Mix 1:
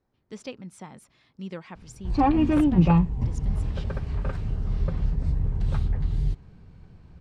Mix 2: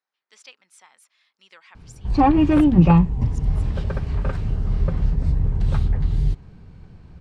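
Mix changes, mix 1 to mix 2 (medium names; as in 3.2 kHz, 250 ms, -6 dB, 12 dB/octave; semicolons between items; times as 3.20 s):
speech: add high-pass 1.4 kHz 12 dB/octave; background +5.0 dB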